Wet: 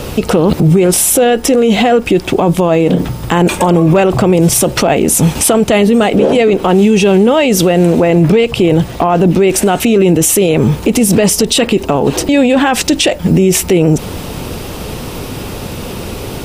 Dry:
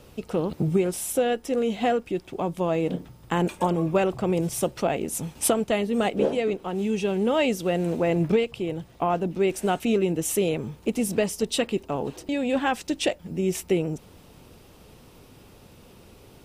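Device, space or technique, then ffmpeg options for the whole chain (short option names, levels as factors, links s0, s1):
loud club master: -af "acompressor=threshold=0.0355:ratio=1.5,asoftclip=type=hard:threshold=0.141,alimiter=level_in=26.6:limit=0.891:release=50:level=0:latency=1,volume=0.891"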